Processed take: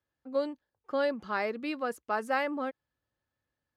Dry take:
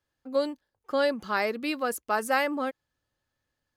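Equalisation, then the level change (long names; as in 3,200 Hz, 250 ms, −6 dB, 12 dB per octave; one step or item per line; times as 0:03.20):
high-pass filter 43 Hz
high-shelf EQ 4,600 Hz −9.5 dB
high-shelf EQ 10,000 Hz −8.5 dB
−3.5 dB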